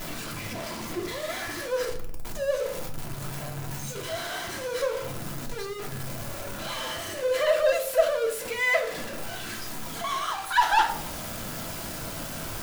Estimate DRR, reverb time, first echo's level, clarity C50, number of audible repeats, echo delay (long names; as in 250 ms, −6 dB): 1.0 dB, 0.65 s, no echo audible, 9.5 dB, no echo audible, no echo audible